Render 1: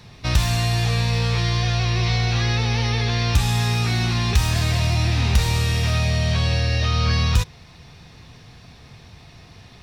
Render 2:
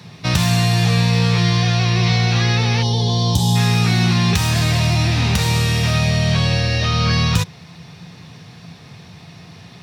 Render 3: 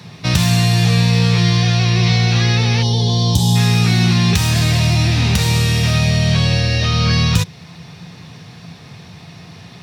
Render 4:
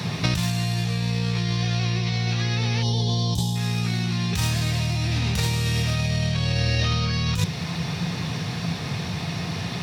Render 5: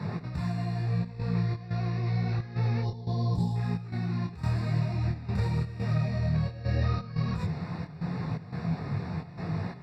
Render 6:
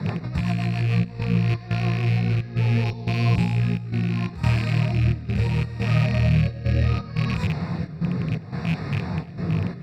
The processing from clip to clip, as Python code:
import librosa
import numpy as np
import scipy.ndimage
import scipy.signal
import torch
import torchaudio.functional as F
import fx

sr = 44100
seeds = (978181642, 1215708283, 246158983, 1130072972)

y1 = scipy.signal.sosfilt(scipy.signal.butter(4, 94.0, 'highpass', fs=sr, output='sos'), x)
y1 = fx.peak_eq(y1, sr, hz=170.0, db=11.0, octaves=0.21)
y1 = fx.spec_box(y1, sr, start_s=2.83, length_s=0.73, low_hz=1100.0, high_hz=2900.0, gain_db=-21)
y1 = y1 * 10.0 ** (4.5 / 20.0)
y2 = fx.dynamic_eq(y1, sr, hz=1000.0, q=0.74, threshold_db=-38.0, ratio=4.0, max_db=-4)
y2 = y2 * 10.0 ** (2.5 / 20.0)
y3 = fx.over_compress(y2, sr, threshold_db=-23.0, ratio=-1.0)
y4 = fx.step_gate(y3, sr, bpm=88, pattern='x.xxxx.x', floor_db=-12.0, edge_ms=4.5)
y4 = scipy.signal.lfilter(np.full(14, 1.0 / 14), 1.0, y4)
y4 = fx.detune_double(y4, sr, cents=29)
y5 = fx.rattle_buzz(y4, sr, strikes_db=-27.0, level_db=-28.0)
y5 = fx.rotary_switch(y5, sr, hz=7.5, then_hz=0.7, switch_at_s=0.61)
y5 = y5 + 10.0 ** (-23.0 / 20.0) * np.pad(y5, (int(306 * sr / 1000.0), 0))[:len(y5)]
y5 = y5 * 10.0 ** (8.5 / 20.0)